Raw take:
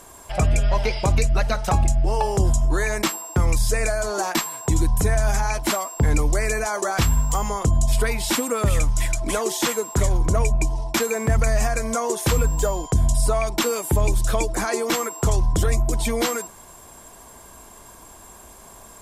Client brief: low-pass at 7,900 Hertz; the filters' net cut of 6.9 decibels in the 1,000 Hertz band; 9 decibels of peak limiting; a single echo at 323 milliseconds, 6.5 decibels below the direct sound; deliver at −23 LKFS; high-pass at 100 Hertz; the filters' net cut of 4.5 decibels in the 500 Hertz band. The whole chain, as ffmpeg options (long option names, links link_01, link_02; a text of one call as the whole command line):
ffmpeg -i in.wav -af "highpass=100,lowpass=7900,equalizer=frequency=500:width_type=o:gain=-3.5,equalizer=frequency=1000:width_type=o:gain=-8,alimiter=limit=-19.5dB:level=0:latency=1,aecho=1:1:323:0.473,volume=6dB" out.wav